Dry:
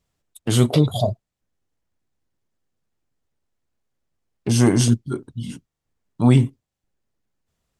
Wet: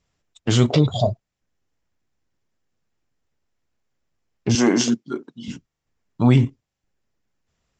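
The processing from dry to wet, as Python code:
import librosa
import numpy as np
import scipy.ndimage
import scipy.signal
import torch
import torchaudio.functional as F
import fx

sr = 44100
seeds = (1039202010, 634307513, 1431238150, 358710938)

p1 = fx.highpass(x, sr, hz=210.0, slope=24, at=(4.55, 5.48))
p2 = fx.level_steps(p1, sr, step_db=11)
p3 = p1 + (p2 * librosa.db_to_amplitude(-0.5))
y = scipy.signal.sosfilt(scipy.signal.cheby1(6, 3, 7500.0, 'lowpass', fs=sr, output='sos'), p3)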